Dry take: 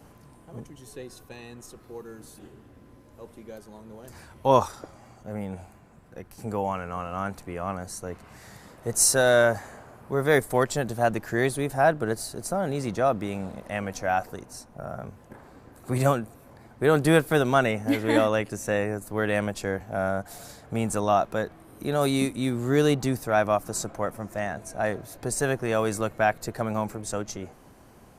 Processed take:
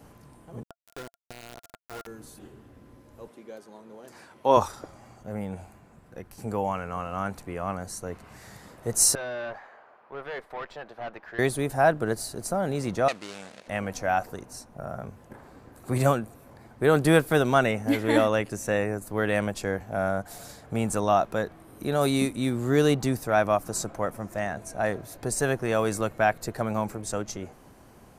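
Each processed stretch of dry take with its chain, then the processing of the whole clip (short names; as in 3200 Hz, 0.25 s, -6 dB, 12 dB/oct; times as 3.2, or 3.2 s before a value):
0.63–2.07 requantised 6-bit, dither none + compressor 2:1, threshold -39 dBFS + small resonant body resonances 680/1400 Hz, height 12 dB, ringing for 50 ms
3.28–4.57 HPF 240 Hz + high shelf 11000 Hz -11 dB
9.15–11.39 HPF 690 Hz + tube stage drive 30 dB, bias 0.4 + air absorption 320 m
13.08–13.68 median filter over 41 samples + weighting filter ITU-R 468
whole clip: dry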